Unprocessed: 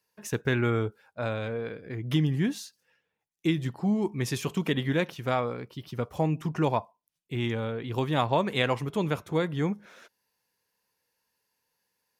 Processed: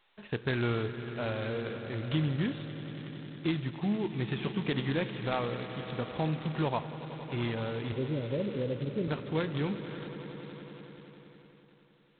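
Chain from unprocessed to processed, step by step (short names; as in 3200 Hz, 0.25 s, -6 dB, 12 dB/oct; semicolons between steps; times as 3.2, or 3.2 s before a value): 5.81–6.67 de-hum 97.13 Hz, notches 35; 7.92–9.08 steep low-pass 570 Hz 96 dB/oct; in parallel at 0 dB: compressor 20:1, threshold -34 dBFS, peak gain reduction 15 dB; on the sum: swelling echo 92 ms, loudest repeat 5, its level -17 dB; on a send at -15.5 dB: reverb, pre-delay 3 ms; on the sum: gain -7 dB; G.726 16 kbps 8000 Hz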